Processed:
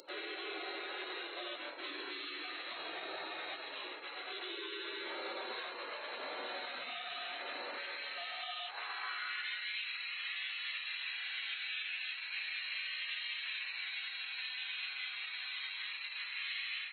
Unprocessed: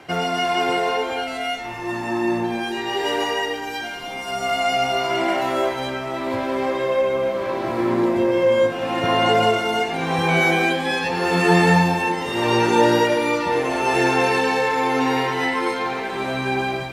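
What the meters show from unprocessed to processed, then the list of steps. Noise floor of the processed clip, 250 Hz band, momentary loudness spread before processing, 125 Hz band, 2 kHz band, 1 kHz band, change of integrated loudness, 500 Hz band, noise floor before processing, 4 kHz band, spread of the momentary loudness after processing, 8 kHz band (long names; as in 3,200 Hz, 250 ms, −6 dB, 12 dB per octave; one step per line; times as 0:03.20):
−46 dBFS, −33.0 dB, 9 LU, below −40 dB, −15.5 dB, −26.5 dB, −19.5 dB, −29.5 dB, −30 dBFS, −12.0 dB, 4 LU, below −40 dB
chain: voice inversion scrambler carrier 3,900 Hz
upward compression, threshold −34 dBFS
low-shelf EQ 200 Hz −11.5 dB
gate on every frequency bin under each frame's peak −25 dB weak
downward compressor, threshold −40 dBFS, peak gain reduction 9.5 dB
parametric band 300 Hz +7.5 dB 0.34 octaves
brickwall limiter −38 dBFS, peak gain reduction 8.5 dB
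high-pass filter sweep 460 Hz → 2,300 Hz, 0:08.10–0:09.81
level +3.5 dB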